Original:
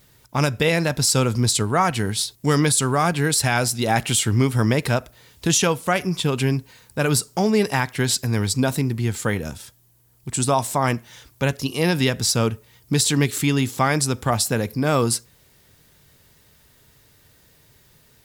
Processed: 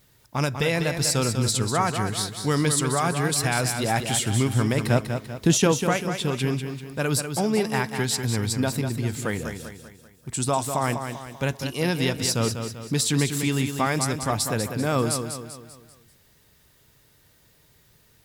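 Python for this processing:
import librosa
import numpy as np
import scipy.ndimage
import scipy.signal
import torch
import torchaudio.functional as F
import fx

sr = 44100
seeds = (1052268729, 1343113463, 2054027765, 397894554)

y = fx.peak_eq(x, sr, hz=240.0, db=7.5, octaves=2.7, at=(4.9, 5.89))
y = fx.echo_feedback(y, sr, ms=195, feedback_pct=45, wet_db=-7.5)
y = F.gain(torch.from_numpy(y), -4.5).numpy()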